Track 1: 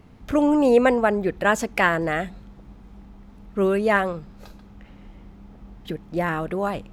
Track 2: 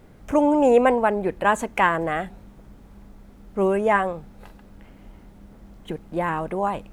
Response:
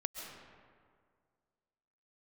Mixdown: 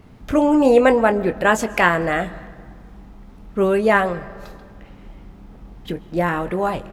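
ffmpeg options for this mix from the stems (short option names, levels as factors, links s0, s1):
-filter_complex "[0:a]volume=1.19,asplit=2[s0][s1];[s1]volume=0.237[s2];[1:a]adelay=23,volume=0.531[s3];[2:a]atrim=start_sample=2205[s4];[s2][s4]afir=irnorm=-1:irlink=0[s5];[s0][s3][s5]amix=inputs=3:normalize=0"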